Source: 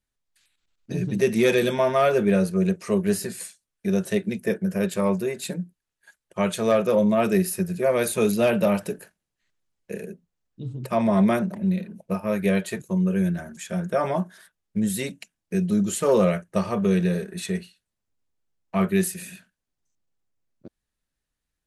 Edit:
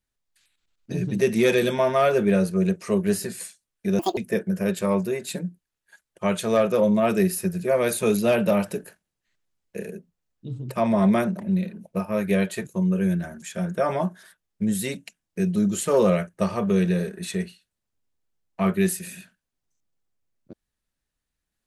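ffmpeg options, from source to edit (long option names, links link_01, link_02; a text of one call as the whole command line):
ffmpeg -i in.wav -filter_complex "[0:a]asplit=3[link_01][link_02][link_03];[link_01]atrim=end=3.994[link_04];[link_02]atrim=start=3.99:end=4.32,asetpts=PTS-STARTPTS,asetrate=79821,aresample=44100,atrim=end_sample=8040,asetpts=PTS-STARTPTS[link_05];[link_03]atrim=start=4.316[link_06];[link_04][link_05]acrossfade=duration=0.004:curve1=hsin:curve2=hsin[link_07];[link_07][link_06]acrossfade=duration=0.004:curve1=hsin:curve2=hsin" out.wav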